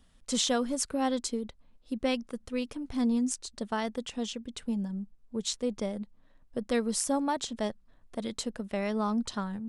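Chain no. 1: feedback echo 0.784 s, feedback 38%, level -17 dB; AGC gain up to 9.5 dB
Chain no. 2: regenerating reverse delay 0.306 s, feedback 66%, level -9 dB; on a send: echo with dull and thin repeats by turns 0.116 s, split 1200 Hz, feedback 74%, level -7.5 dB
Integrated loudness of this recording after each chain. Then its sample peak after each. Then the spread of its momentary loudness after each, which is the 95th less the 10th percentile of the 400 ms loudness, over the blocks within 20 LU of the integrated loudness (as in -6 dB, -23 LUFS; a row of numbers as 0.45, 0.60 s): -23.5, -31.0 LUFS; -3.5, -11.5 dBFS; 10, 9 LU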